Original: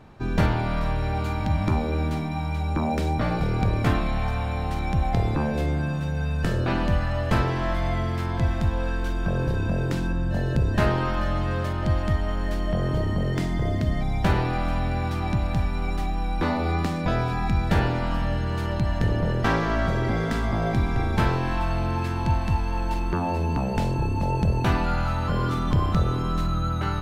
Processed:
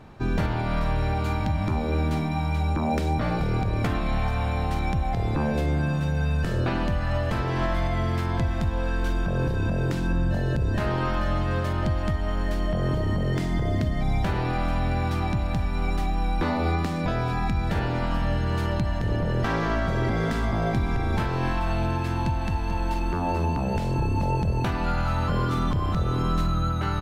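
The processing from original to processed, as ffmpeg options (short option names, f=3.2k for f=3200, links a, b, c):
-filter_complex "[0:a]asplit=3[a][b][c];[a]afade=t=out:st=21.65:d=0.02[d];[b]aecho=1:1:221:0.282,afade=t=in:st=21.65:d=0.02,afade=t=out:st=23.79:d=0.02[e];[c]afade=t=in:st=23.79:d=0.02[f];[d][e][f]amix=inputs=3:normalize=0,alimiter=limit=-18dB:level=0:latency=1:release=219,volume=2dB"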